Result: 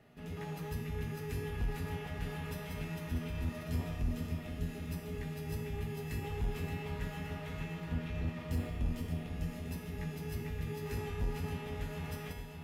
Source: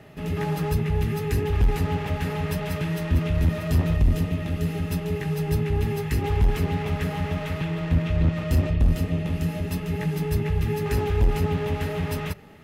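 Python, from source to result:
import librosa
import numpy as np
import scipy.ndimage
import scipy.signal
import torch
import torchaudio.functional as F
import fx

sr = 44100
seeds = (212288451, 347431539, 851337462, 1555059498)

y = fx.comb_fb(x, sr, f0_hz=240.0, decay_s=1.1, harmonics='all', damping=0.0, mix_pct=90)
y = fx.echo_feedback(y, sr, ms=574, feedback_pct=58, wet_db=-8.5)
y = y * 10.0 ** (3.5 / 20.0)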